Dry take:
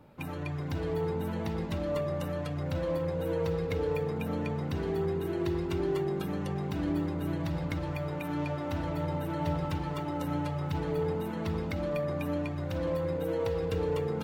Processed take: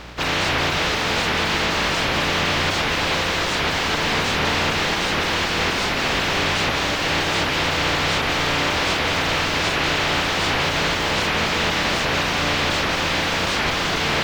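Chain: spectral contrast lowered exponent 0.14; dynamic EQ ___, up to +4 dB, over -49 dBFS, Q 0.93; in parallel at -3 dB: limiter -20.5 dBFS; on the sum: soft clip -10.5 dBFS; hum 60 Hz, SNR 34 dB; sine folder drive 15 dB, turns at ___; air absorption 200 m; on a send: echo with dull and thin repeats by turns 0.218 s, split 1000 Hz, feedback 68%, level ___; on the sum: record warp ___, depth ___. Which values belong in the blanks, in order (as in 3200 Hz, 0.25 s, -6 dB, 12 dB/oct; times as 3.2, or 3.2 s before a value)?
2800 Hz, -12 dBFS, -11 dB, 78 rpm, 250 cents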